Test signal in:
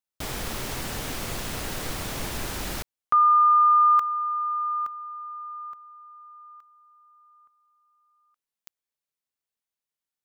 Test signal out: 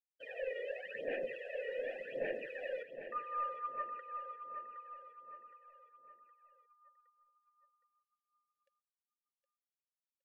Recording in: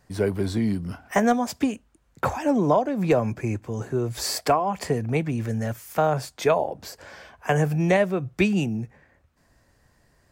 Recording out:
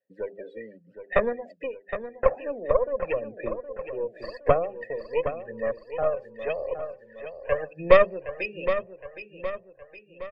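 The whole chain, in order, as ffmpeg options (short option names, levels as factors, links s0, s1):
-filter_complex "[0:a]bandreject=f=50:t=h:w=6,bandreject=f=100:t=h:w=6,bandreject=f=150:t=h:w=6,bandreject=f=200:t=h:w=6,bandreject=f=250:t=h:w=6,bandreject=f=300:t=h:w=6,bandreject=f=350:t=h:w=6,bandreject=f=400:t=h:w=6,aphaser=in_gain=1:out_gain=1:delay=2.1:decay=0.64:speed=0.88:type=sinusoidal,asplit=3[s0][s1][s2];[s0]bandpass=f=530:t=q:w=8,volume=1[s3];[s1]bandpass=f=1840:t=q:w=8,volume=0.501[s4];[s2]bandpass=f=2480:t=q:w=8,volume=0.355[s5];[s3][s4][s5]amix=inputs=3:normalize=0,equalizer=f=90:w=3.5:g=-13,bandreject=f=6000:w=17,aeval=exprs='0.501*(cos(1*acos(clip(val(0)/0.501,-1,1)))-cos(1*PI/2))+0.126*(cos(2*acos(clip(val(0)/0.501,-1,1)))-cos(2*PI/2))+0.0501*(cos(6*acos(clip(val(0)/0.501,-1,1)))-cos(6*PI/2))':c=same,afftdn=nr=23:nf=-44,asplit=2[s6][s7];[s7]aecho=0:1:766|1532|2298|3064|3830:0.316|0.149|0.0699|0.0328|0.0154[s8];[s6][s8]amix=inputs=2:normalize=0,volume=1.33"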